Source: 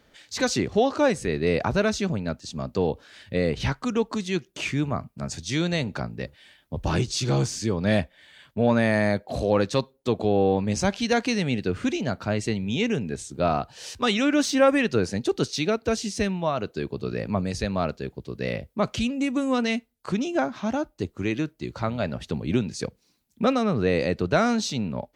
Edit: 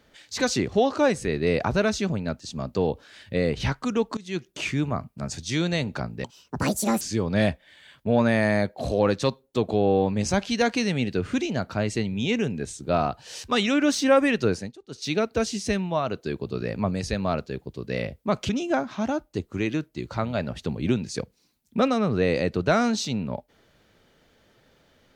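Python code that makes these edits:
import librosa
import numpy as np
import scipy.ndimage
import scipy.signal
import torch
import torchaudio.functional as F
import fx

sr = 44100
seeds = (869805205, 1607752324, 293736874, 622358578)

y = fx.edit(x, sr, fx.fade_in_from(start_s=4.17, length_s=0.28, floor_db=-20.0),
    fx.speed_span(start_s=6.24, length_s=1.28, speed=1.66),
    fx.fade_down_up(start_s=15.02, length_s=0.62, db=-23.5, fade_s=0.25),
    fx.cut(start_s=19.0, length_s=1.14), tone=tone)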